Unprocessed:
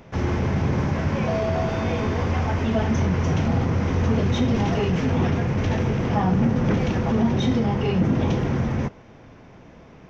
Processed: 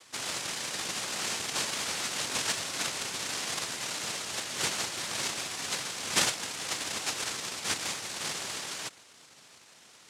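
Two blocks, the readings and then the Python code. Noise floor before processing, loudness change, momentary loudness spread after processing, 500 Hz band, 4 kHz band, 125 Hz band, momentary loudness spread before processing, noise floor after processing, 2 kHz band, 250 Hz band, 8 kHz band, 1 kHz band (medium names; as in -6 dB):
-47 dBFS, -9.0 dB, 5 LU, -17.0 dB, +6.5 dB, -29.5 dB, 3 LU, -56 dBFS, -2.0 dB, -24.5 dB, no reading, -10.0 dB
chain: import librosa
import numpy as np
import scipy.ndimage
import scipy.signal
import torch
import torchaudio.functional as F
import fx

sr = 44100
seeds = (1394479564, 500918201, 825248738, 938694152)

y = fx.brickwall_bandpass(x, sr, low_hz=700.0, high_hz=2900.0)
y = fx.noise_vocoder(y, sr, seeds[0], bands=1)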